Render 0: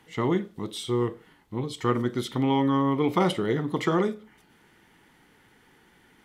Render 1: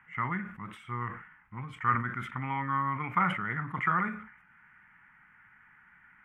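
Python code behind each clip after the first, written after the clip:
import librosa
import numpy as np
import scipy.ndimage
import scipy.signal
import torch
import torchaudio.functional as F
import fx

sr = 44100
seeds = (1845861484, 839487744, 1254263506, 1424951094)

y = fx.curve_eq(x, sr, hz=(190.0, 310.0, 440.0, 1400.0, 2400.0, 4000.0, 7400.0), db=(0, -14, -18, 14, 7, -28, -19))
y = fx.sustainer(y, sr, db_per_s=94.0)
y = y * 10.0 ** (-7.0 / 20.0)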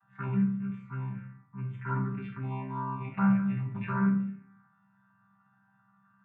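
y = fx.chord_vocoder(x, sr, chord='bare fifth', root=48)
y = fx.env_phaser(y, sr, low_hz=380.0, high_hz=3400.0, full_db=-26.0)
y = fx.room_shoebox(y, sr, seeds[0], volume_m3=48.0, walls='mixed', distance_m=0.61)
y = y * 10.0 ** (-2.0 / 20.0)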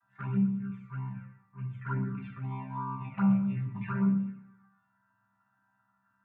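y = fx.env_flanger(x, sr, rest_ms=3.1, full_db=-25.0)
y = fx.echo_feedback(y, sr, ms=119, feedback_pct=40, wet_db=-16.0)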